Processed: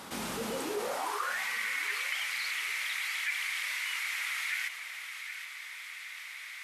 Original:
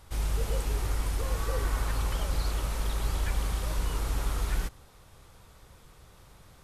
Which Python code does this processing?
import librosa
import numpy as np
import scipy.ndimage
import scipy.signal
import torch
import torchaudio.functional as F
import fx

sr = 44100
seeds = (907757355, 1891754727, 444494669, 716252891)

p1 = fx.high_shelf(x, sr, hz=4600.0, db=-5.5)
p2 = fx.filter_sweep_highpass(p1, sr, from_hz=220.0, to_hz=2100.0, start_s=0.54, end_s=1.43, q=6.6)
p3 = fx.low_shelf(p2, sr, hz=460.0, db=-12.0)
p4 = p3 + fx.echo_alternate(p3, sr, ms=384, hz=960.0, feedback_pct=53, wet_db=-11.5, dry=0)
y = fx.env_flatten(p4, sr, amount_pct=50)